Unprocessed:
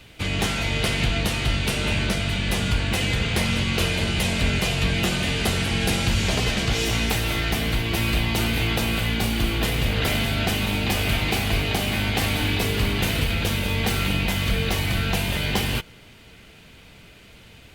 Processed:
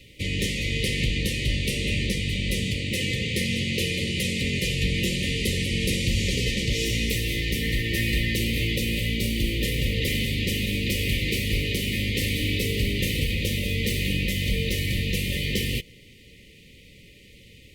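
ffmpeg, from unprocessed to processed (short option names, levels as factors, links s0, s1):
-filter_complex "[0:a]asettb=1/sr,asplit=3[s0][s1][s2];[s0]atrim=end=2.644[s3];[s1]atrim=start=2.64:end=4.63,asetpts=PTS-STARTPTS,afade=t=in:d=0.004:c=qsin,afade=t=out:st=1.986:d=0.004:c=qsin,highpass=93[s4];[s2]atrim=start=4.626[s5];[s3][s4]acrossfade=d=0.004:c1=hsin:c2=qsin[s6];[s6][s5]acrossfade=d=0.004:c1=qsin:c2=hsin,asettb=1/sr,asplit=3[s7][s8][s9];[s7]atrim=end=7.634[s10];[s8]atrim=start=7.63:end=8.36,asetpts=PTS-STARTPTS,afade=t=in:d=0.004:c=qsin,afade=t=out:st=0.726:d=0.004:c=qsin,equalizer=f=1800:w=7.3:g=12.5[s11];[s9]atrim=start=8.356[s12];[s10][s11]acrossfade=d=0.004:c1=hsin:c2=qsin[s13];[s13][s12]acrossfade=d=0.004:c1=qsin:c2=hsin,afftfilt=real='re*(1-between(b*sr/4096,590,1800))':imag='im*(1-between(b*sr/4096,590,1800))':win_size=4096:overlap=0.75,volume=0.794"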